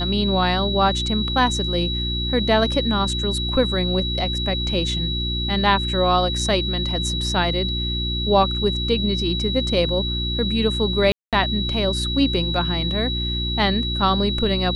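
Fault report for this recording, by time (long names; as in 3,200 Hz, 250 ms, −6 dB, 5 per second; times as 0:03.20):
mains hum 60 Hz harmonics 6 −26 dBFS
whistle 3,900 Hz −25 dBFS
0:11.12–0:11.33: drop-out 207 ms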